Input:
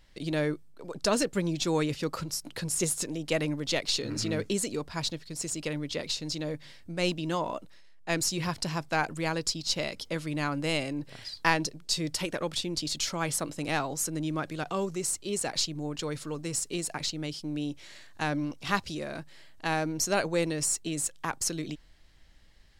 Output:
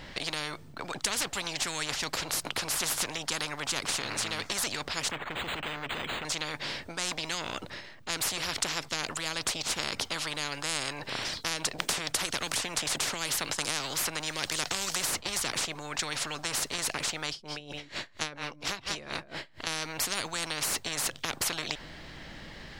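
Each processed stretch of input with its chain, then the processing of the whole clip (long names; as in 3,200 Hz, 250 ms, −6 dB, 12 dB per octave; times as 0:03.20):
0:05.11–0:06.25: hard clipping −36 dBFS + linearly interpolated sample-rate reduction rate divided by 8×
0:11.78–0:15.65: downward expander −41 dBFS + multiband upward and downward compressor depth 100%
0:17.29–0:19.67: single-tap delay 162 ms −13.5 dB + tremolo with a sine in dB 4.3 Hz, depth 29 dB
whole clip: parametric band 12,000 Hz −15 dB 1.8 octaves; every bin compressed towards the loudest bin 10 to 1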